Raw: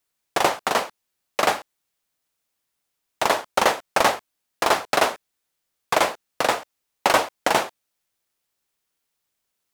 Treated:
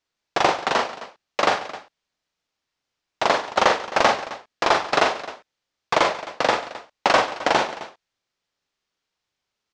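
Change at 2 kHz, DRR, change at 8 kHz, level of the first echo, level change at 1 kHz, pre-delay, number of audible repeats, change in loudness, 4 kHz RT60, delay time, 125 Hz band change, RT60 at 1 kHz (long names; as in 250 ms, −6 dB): +1.5 dB, no reverb audible, −5.0 dB, −5.0 dB, +1.5 dB, no reverb audible, 3, +1.0 dB, no reverb audible, 42 ms, +1.5 dB, no reverb audible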